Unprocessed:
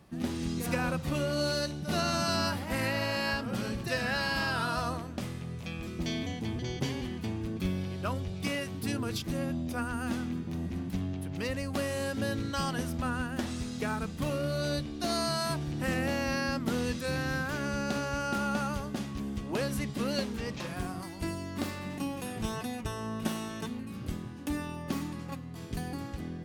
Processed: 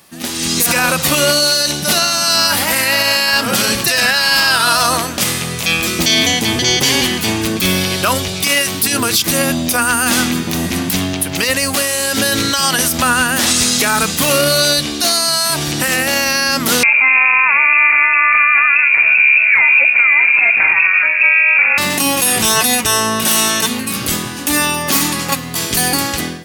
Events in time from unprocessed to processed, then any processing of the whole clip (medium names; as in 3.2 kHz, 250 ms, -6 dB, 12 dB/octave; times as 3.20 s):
16.83–21.78 s: frequency inversion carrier 2.6 kHz
whole clip: tilt EQ +4 dB/octave; level rider gain up to 13.5 dB; loudness maximiser +13.5 dB; trim -2 dB